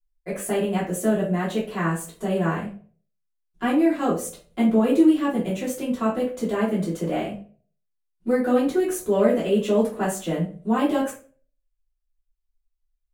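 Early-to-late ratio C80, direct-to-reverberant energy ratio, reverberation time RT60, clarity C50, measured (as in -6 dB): 12.5 dB, -9.0 dB, 0.45 s, 7.0 dB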